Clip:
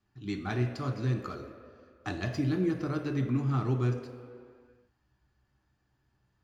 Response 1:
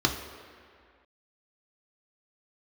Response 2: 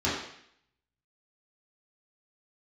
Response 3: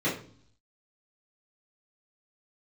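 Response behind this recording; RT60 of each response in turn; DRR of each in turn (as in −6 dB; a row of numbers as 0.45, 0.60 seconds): 1; 2.1, 0.65, 0.50 seconds; 2.0, −9.5, −10.0 decibels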